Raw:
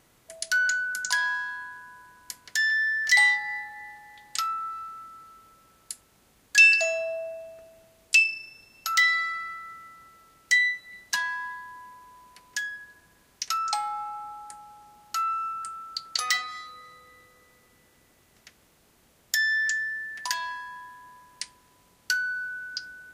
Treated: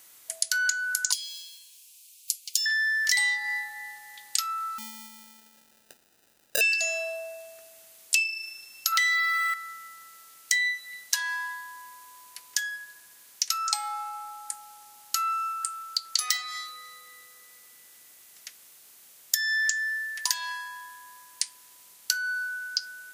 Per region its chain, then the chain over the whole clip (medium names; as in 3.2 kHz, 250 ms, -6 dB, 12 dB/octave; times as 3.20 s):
1.12–2.66 s: block-companded coder 7-bit + elliptic high-pass 2.5 kHz + comb 7 ms, depth 56%
4.78–6.61 s: low-pass 3 kHz + sample-rate reducer 1.1 kHz
8.92–9.54 s: three-band isolator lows -17 dB, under 600 Hz, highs -21 dB, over 4.7 kHz + waveshaping leveller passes 1 + three bands compressed up and down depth 70%
whole clip: tilt EQ +4.5 dB/octave; compression 4:1, threshold -22 dBFS; trim -1 dB